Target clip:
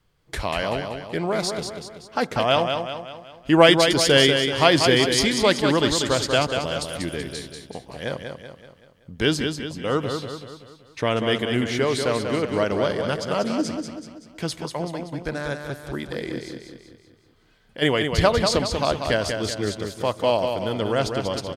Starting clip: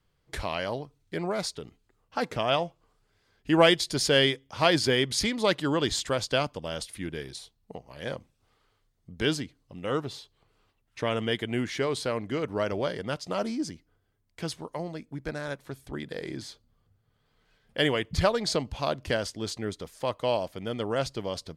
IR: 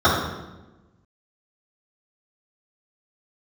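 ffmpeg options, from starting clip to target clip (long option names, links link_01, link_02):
-filter_complex "[0:a]asplit=3[link_01][link_02][link_03];[link_01]afade=type=out:start_time=16.38:duration=0.02[link_04];[link_02]acompressor=threshold=-50dB:ratio=2,afade=type=in:start_time=16.38:duration=0.02,afade=type=out:start_time=17.81:duration=0.02[link_05];[link_03]afade=type=in:start_time=17.81:duration=0.02[link_06];[link_04][link_05][link_06]amix=inputs=3:normalize=0,aecho=1:1:190|380|570|760|950|1140:0.501|0.241|0.115|0.0554|0.0266|0.0128,asplit=2[link_07][link_08];[1:a]atrim=start_sample=2205[link_09];[link_08][link_09]afir=irnorm=-1:irlink=0,volume=-45.5dB[link_10];[link_07][link_10]amix=inputs=2:normalize=0,volume=5.5dB"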